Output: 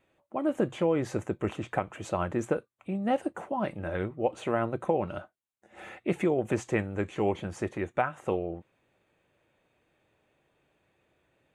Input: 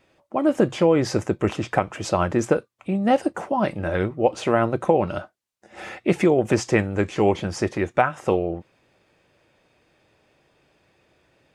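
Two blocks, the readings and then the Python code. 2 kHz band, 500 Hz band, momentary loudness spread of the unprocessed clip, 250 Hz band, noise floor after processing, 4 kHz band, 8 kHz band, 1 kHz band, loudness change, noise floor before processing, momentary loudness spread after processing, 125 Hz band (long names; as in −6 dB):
−9.0 dB, −8.5 dB, 8 LU, −8.5 dB, −74 dBFS, −12.0 dB, −12.0 dB, −8.5 dB, −8.5 dB, −66 dBFS, 8 LU, −8.5 dB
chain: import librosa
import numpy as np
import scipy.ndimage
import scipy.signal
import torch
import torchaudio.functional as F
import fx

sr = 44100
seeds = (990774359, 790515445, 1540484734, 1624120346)

y = fx.peak_eq(x, sr, hz=5100.0, db=-14.5, octaves=0.37)
y = y * librosa.db_to_amplitude(-8.5)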